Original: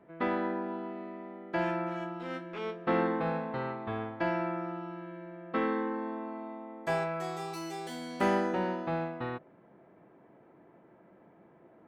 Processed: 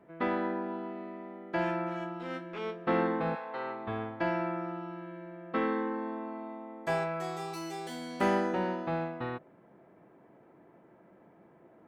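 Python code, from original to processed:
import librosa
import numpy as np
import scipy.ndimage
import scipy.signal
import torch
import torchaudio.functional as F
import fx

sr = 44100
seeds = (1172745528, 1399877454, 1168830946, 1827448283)

y = fx.highpass(x, sr, hz=fx.line((3.34, 860.0), (3.86, 200.0)), slope=12, at=(3.34, 3.86), fade=0.02)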